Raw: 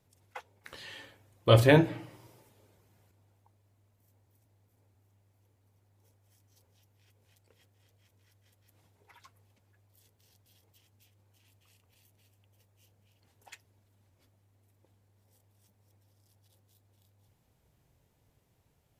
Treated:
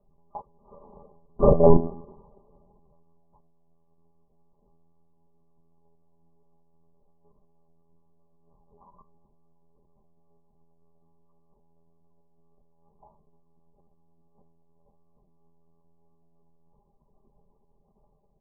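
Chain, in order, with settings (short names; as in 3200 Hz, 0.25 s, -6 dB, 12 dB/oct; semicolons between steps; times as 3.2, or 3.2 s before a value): granular stretch 0.57×, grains 81 ms; brick-wall FIR low-pass 1200 Hz; doubler 13 ms -5 dB; monotone LPC vocoder at 8 kHz 140 Hz; granular stretch 1.7×, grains 24 ms; gain +8.5 dB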